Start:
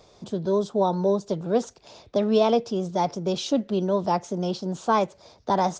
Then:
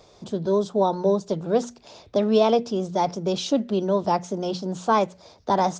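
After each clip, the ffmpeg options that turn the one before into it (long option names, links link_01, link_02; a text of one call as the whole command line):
ffmpeg -i in.wav -af "bandreject=frequency=60:width_type=h:width=6,bandreject=frequency=120:width_type=h:width=6,bandreject=frequency=180:width_type=h:width=6,bandreject=frequency=240:width_type=h:width=6,volume=1.5dB" out.wav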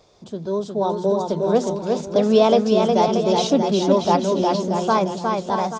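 ffmpeg -i in.wav -filter_complex "[0:a]dynaudnorm=framelen=210:gausssize=11:maxgain=10dB,asplit=2[link_01][link_02];[link_02]aecho=0:1:360|630|832.5|984.4|1098:0.631|0.398|0.251|0.158|0.1[link_03];[link_01][link_03]amix=inputs=2:normalize=0,volume=-3dB" out.wav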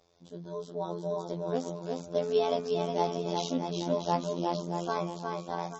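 ffmpeg -i in.wav -af "afftfilt=real='hypot(re,im)*cos(PI*b)':imag='0':win_size=2048:overlap=0.75,bandreject=frequency=92.76:width_type=h:width=4,bandreject=frequency=185.52:width_type=h:width=4,bandreject=frequency=278.28:width_type=h:width=4,bandreject=frequency=371.04:width_type=h:width=4,bandreject=frequency=463.8:width_type=h:width=4,bandreject=frequency=556.56:width_type=h:width=4,bandreject=frequency=649.32:width_type=h:width=4,bandreject=frequency=742.08:width_type=h:width=4,bandreject=frequency=834.84:width_type=h:width=4,bandreject=frequency=927.6:width_type=h:width=4,bandreject=frequency=1020.36:width_type=h:width=4,bandreject=frequency=1113.12:width_type=h:width=4,bandreject=frequency=1205.88:width_type=h:width=4,bandreject=frequency=1298.64:width_type=h:width=4,bandreject=frequency=1391.4:width_type=h:width=4,bandreject=frequency=1484.16:width_type=h:width=4,bandreject=frequency=1576.92:width_type=h:width=4,bandreject=frequency=1669.68:width_type=h:width=4,bandreject=frequency=1762.44:width_type=h:width=4,bandreject=frequency=1855.2:width_type=h:width=4,bandreject=frequency=1947.96:width_type=h:width=4,bandreject=frequency=2040.72:width_type=h:width=4,bandreject=frequency=2133.48:width_type=h:width=4,bandreject=frequency=2226.24:width_type=h:width=4,bandreject=frequency=2319:width_type=h:width=4,bandreject=frequency=2411.76:width_type=h:width=4,bandreject=frequency=2504.52:width_type=h:width=4,bandreject=frequency=2597.28:width_type=h:width=4,bandreject=frequency=2690.04:width_type=h:width=4,bandreject=frequency=2782.8:width_type=h:width=4,bandreject=frequency=2875.56:width_type=h:width=4,bandreject=frequency=2968.32:width_type=h:width=4,bandreject=frequency=3061.08:width_type=h:width=4,bandreject=frequency=3153.84:width_type=h:width=4,bandreject=frequency=3246.6:width_type=h:width=4,volume=-8.5dB" -ar 32000 -c:a libmp3lame -b:a 32k out.mp3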